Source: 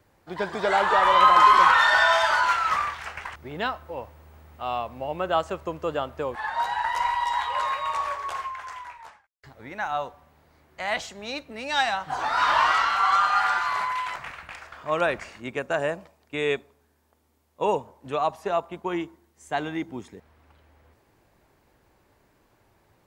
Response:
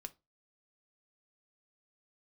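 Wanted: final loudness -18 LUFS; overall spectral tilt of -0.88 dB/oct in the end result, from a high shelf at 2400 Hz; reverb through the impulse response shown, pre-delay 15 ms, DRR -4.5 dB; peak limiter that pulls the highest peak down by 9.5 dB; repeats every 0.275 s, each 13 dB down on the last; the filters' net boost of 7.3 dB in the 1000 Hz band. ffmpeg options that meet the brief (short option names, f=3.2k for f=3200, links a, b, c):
-filter_complex "[0:a]equalizer=f=1k:t=o:g=9,highshelf=f=2.4k:g=-4,alimiter=limit=-6.5dB:level=0:latency=1,aecho=1:1:275|550|825:0.224|0.0493|0.0108,asplit=2[a][b];[1:a]atrim=start_sample=2205,adelay=15[c];[b][c]afir=irnorm=-1:irlink=0,volume=9.5dB[d];[a][d]amix=inputs=2:normalize=0,volume=-4.5dB"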